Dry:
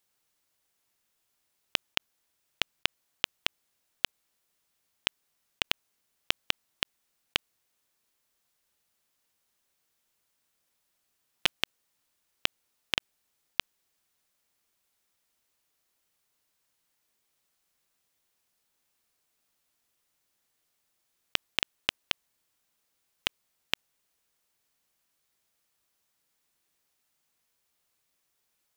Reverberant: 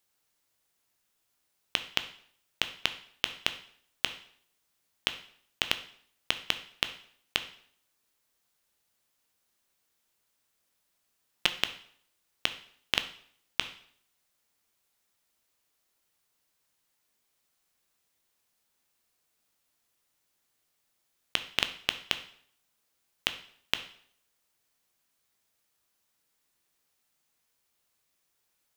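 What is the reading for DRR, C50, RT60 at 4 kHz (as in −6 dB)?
9.0 dB, 13.0 dB, 0.55 s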